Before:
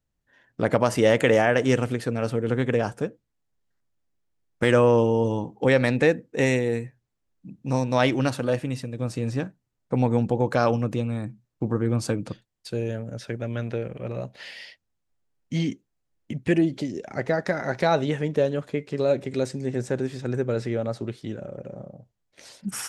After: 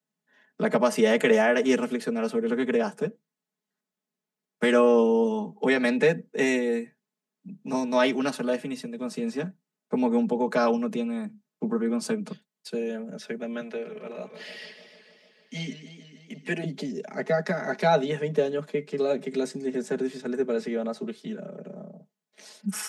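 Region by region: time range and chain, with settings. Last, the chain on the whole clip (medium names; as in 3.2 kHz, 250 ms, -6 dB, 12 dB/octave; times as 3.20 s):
13.60–16.64 s: high-pass 430 Hz 6 dB/octave + modulated delay 150 ms, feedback 72%, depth 133 cents, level -11 dB
whole clip: steep high-pass 150 Hz 96 dB/octave; comb 4.7 ms, depth 98%; trim -4 dB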